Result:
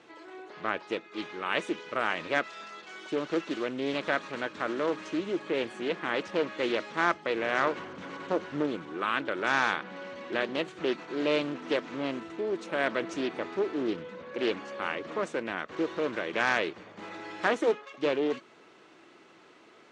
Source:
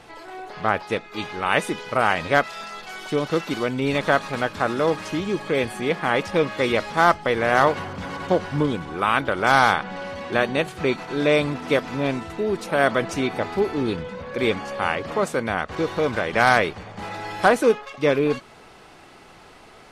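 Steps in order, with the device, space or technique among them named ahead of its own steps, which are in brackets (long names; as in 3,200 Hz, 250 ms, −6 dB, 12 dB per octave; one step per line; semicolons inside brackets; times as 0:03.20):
full-range speaker at full volume (highs frequency-modulated by the lows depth 0.44 ms; loudspeaker in its box 210–7,300 Hz, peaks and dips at 330 Hz +7 dB, 780 Hz −7 dB, 4,900 Hz −5 dB)
level −8 dB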